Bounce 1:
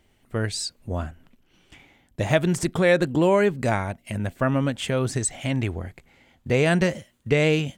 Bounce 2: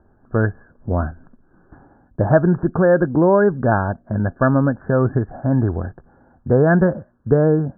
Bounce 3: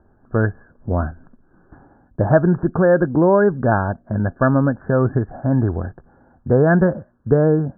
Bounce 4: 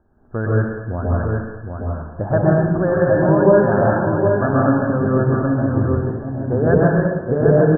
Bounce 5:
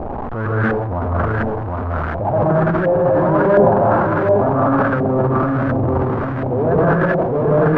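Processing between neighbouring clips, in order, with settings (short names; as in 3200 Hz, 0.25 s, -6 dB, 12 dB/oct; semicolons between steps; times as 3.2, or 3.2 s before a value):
Chebyshev low-pass 1700 Hz, order 10; in parallel at -2.5 dB: vocal rider within 4 dB 0.5 s; on the sum: gain +2 dB
nothing audible
echo 0.765 s -5 dB; plate-style reverb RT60 1.2 s, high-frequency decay 0.9×, pre-delay 0.105 s, DRR -5 dB; gain -6 dB
zero-crossing step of -16 dBFS; transient shaper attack -7 dB, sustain +11 dB; LFO low-pass saw up 1.4 Hz 710–1600 Hz; gain -4.5 dB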